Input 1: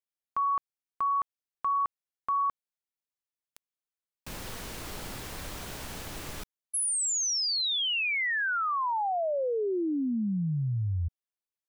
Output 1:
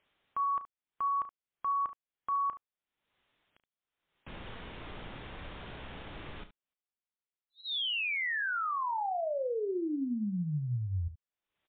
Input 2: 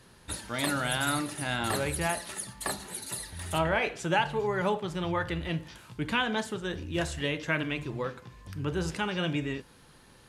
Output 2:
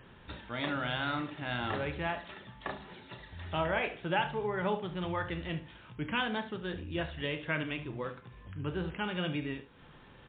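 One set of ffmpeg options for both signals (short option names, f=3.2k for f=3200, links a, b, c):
-af "aecho=1:1:33|72:0.237|0.2,acompressor=mode=upward:threshold=-37dB:ratio=2.5:attack=0.12:release=367:knee=2.83:detection=peak,volume=-4dB" -ar 8000 -c:a libmp3lame -b:a 56k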